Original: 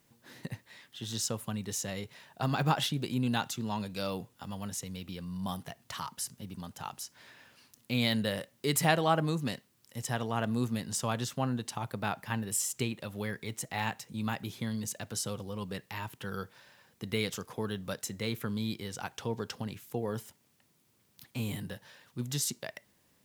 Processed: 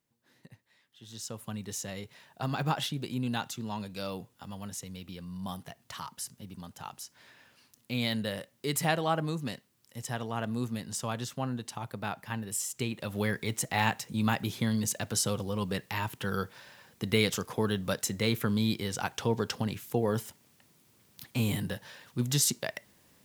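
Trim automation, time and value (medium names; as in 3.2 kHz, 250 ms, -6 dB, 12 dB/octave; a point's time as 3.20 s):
0.90 s -14 dB
1.52 s -2 dB
12.75 s -2 dB
13.17 s +6 dB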